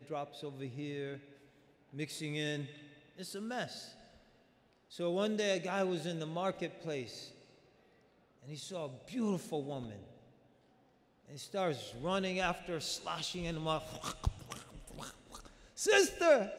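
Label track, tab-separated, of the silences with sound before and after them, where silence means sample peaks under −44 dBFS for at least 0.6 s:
1.180000	1.940000	silence
3.880000	4.920000	silence
7.290000	8.480000	silence
10.030000	11.320000	silence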